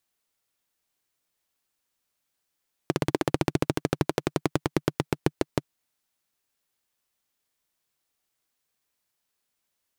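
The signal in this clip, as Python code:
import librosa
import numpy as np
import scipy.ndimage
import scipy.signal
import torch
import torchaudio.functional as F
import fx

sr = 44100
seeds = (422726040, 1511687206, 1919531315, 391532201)

y = fx.engine_single_rev(sr, seeds[0], length_s=2.86, rpm=2000, resonances_hz=(150.0, 310.0), end_rpm=600)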